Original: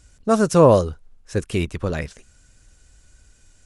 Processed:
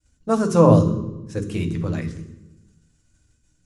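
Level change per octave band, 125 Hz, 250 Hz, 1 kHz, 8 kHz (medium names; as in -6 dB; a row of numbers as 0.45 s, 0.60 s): +3.5 dB, +2.0 dB, -2.0 dB, -5.0 dB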